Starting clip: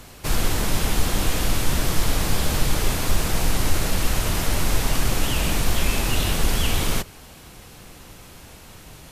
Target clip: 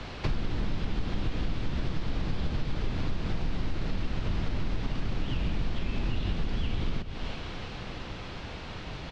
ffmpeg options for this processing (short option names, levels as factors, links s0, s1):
-filter_complex "[0:a]aecho=1:1:335|670|1005|1340:0.0891|0.049|0.027|0.0148,acrossover=split=130|320[s0][s1][s2];[s0]acompressor=threshold=0.0708:ratio=4[s3];[s1]acompressor=threshold=0.02:ratio=4[s4];[s2]acompressor=threshold=0.0112:ratio=4[s5];[s3][s4][s5]amix=inputs=3:normalize=0,lowpass=f=4400:w=0.5412,lowpass=f=4400:w=1.3066,acompressor=threshold=0.0316:ratio=5,volume=1.78"